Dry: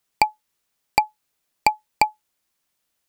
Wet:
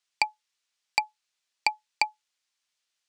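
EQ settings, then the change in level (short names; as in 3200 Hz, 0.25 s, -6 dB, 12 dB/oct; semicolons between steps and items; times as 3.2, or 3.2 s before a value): air absorption 110 m; pre-emphasis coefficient 0.97; high shelf 10000 Hz -9.5 dB; +9.0 dB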